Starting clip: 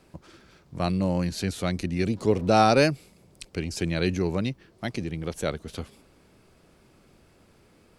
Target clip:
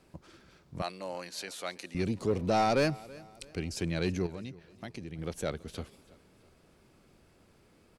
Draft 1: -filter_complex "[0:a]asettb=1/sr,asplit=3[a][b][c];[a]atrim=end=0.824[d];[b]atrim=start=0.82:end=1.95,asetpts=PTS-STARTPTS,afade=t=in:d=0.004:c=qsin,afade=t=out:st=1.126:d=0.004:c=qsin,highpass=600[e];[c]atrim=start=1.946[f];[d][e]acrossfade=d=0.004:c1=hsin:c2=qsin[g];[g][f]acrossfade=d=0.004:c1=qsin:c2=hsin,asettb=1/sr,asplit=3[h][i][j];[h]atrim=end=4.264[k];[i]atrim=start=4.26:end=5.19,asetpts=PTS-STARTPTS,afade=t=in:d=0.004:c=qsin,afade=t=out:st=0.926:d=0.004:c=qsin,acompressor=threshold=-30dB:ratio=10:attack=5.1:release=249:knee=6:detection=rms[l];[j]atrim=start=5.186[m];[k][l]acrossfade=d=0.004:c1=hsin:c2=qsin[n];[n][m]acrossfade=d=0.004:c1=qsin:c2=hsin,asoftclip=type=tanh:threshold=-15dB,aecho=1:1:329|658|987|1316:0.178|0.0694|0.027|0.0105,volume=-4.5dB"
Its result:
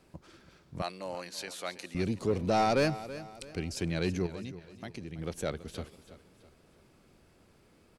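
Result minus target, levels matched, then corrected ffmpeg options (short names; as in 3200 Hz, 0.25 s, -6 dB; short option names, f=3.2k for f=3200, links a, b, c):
echo-to-direct +6.5 dB
-filter_complex "[0:a]asettb=1/sr,asplit=3[a][b][c];[a]atrim=end=0.824[d];[b]atrim=start=0.82:end=1.95,asetpts=PTS-STARTPTS,afade=t=in:d=0.004:c=qsin,afade=t=out:st=1.126:d=0.004:c=qsin,highpass=600[e];[c]atrim=start=1.946[f];[d][e]acrossfade=d=0.004:c1=hsin:c2=qsin[g];[g][f]acrossfade=d=0.004:c1=qsin:c2=hsin,asettb=1/sr,asplit=3[h][i][j];[h]atrim=end=4.264[k];[i]atrim=start=4.26:end=5.19,asetpts=PTS-STARTPTS,afade=t=in:d=0.004:c=qsin,afade=t=out:st=0.926:d=0.004:c=qsin,acompressor=threshold=-30dB:ratio=10:attack=5.1:release=249:knee=6:detection=rms[l];[j]atrim=start=5.186[m];[k][l]acrossfade=d=0.004:c1=hsin:c2=qsin[n];[n][m]acrossfade=d=0.004:c1=qsin:c2=hsin,asoftclip=type=tanh:threshold=-15dB,aecho=1:1:329|658|987:0.0841|0.0328|0.0128,volume=-4.5dB"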